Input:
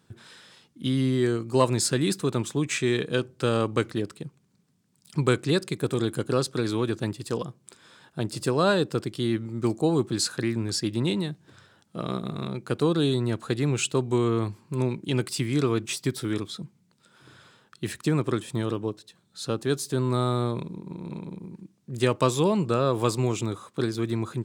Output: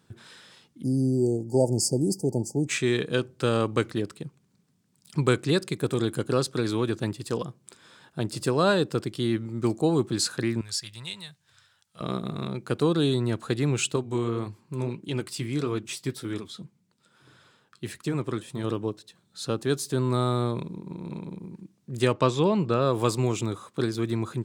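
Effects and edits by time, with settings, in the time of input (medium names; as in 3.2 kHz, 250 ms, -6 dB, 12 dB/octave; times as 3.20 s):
0.83–2.68 s: spectral selection erased 900–4500 Hz
10.61–12.01 s: amplifier tone stack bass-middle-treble 10-0-10
13.96–18.64 s: flange 1.7 Hz, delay 1.8 ms, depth 8.2 ms, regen -61%
22.12–22.82 s: low-pass 4.9 kHz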